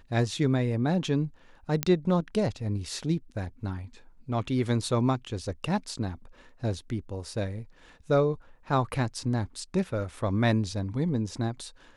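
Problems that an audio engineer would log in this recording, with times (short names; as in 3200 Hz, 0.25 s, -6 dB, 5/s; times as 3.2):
1.83 pop -8 dBFS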